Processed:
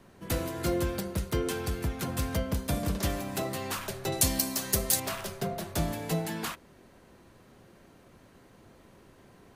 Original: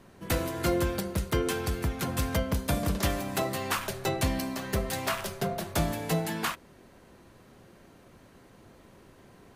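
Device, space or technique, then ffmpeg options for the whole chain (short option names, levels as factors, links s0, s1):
one-band saturation: -filter_complex "[0:a]acrossover=split=580|3600[s0][s1][s2];[s1]asoftclip=type=tanh:threshold=0.0224[s3];[s0][s3][s2]amix=inputs=3:normalize=0,asettb=1/sr,asplit=3[s4][s5][s6];[s4]atrim=end=4.124[s7];[s5]atrim=start=4.12:end=5,asetpts=PTS-STARTPTS,afade=t=in:d=0.004:c=qsin,afade=t=out:st=0.876:d=0.004:c=qsin,bass=f=250:g=-1,treble=f=4000:g=15[s8];[s6]atrim=start=4.996[s9];[s7][s8]acrossfade=d=0.004:c1=hsin:c2=qsin[s10];[s10][s9]acrossfade=d=0.004:c1=qsin:c2=hsin,volume=0.841"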